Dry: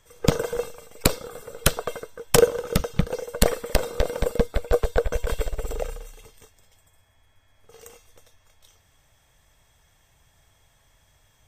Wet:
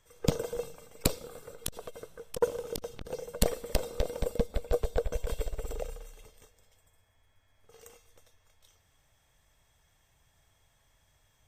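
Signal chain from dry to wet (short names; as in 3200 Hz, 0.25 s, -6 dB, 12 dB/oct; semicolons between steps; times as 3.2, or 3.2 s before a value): dynamic EQ 1500 Hz, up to -7 dB, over -43 dBFS, Q 1.1; on a send at -23 dB: reverb RT60 2.5 s, pre-delay 89 ms; 1.24–3.06 on the sum: core saturation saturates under 610 Hz; gain -7 dB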